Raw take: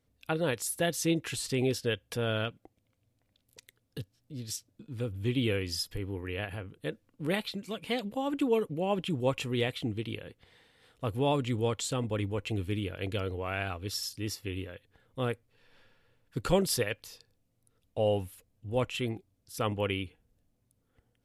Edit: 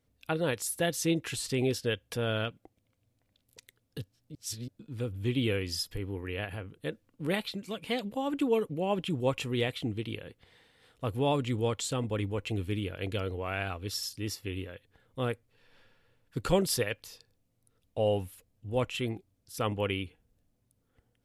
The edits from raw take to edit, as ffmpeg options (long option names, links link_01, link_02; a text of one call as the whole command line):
ffmpeg -i in.wav -filter_complex "[0:a]asplit=3[link_01][link_02][link_03];[link_01]atrim=end=4.352[link_04];[link_02]atrim=start=4.348:end=4.682,asetpts=PTS-STARTPTS,areverse[link_05];[link_03]atrim=start=4.678[link_06];[link_04][link_05]acrossfade=duration=0.004:curve1=hsin:curve2=hsin[link_07];[link_07][link_06]acrossfade=duration=0.004:curve1=hsin:curve2=hsin" out.wav